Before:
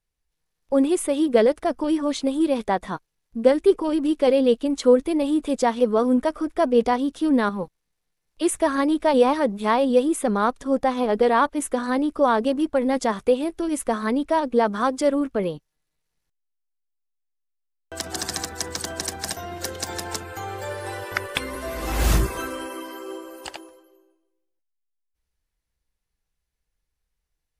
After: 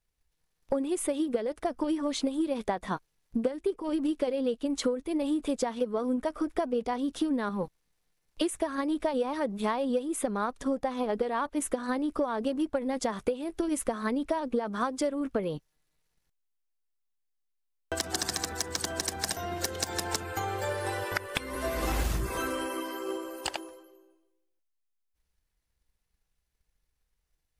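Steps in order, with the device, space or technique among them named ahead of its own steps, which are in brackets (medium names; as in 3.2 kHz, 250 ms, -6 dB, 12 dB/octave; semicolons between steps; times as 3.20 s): drum-bus smash (transient shaper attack +7 dB, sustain +3 dB; compression 12:1, threshold -24 dBFS, peak gain reduction 20.5 dB; saturation -13 dBFS, distortion -24 dB); trim -1 dB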